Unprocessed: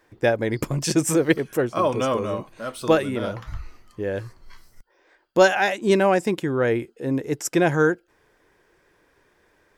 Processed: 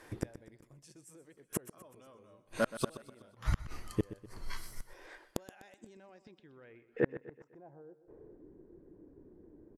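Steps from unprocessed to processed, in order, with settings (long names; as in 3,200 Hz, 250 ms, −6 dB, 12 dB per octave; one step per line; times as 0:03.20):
brickwall limiter −15.5 dBFS, peak gain reduction 12 dB
gate with flip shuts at −22 dBFS, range −39 dB
low-pass filter sweep 11,000 Hz → 300 Hz, 0:05.53–0:08.45
repeating echo 125 ms, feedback 47%, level −15 dB
level +5.5 dB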